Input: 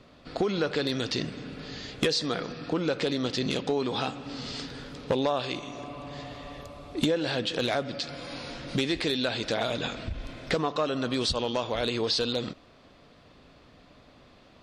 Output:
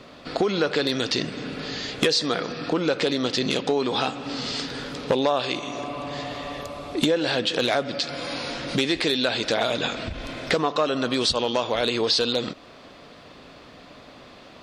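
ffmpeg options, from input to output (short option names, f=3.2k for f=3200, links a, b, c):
-filter_complex "[0:a]lowshelf=f=140:g=-11,asplit=2[a][b];[b]acompressor=threshold=-40dB:ratio=6,volume=1.5dB[c];[a][c]amix=inputs=2:normalize=0,volume=4dB"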